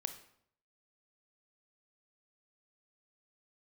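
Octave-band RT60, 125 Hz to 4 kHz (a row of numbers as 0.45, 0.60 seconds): 0.80, 0.70, 0.70, 0.65, 0.55, 0.50 seconds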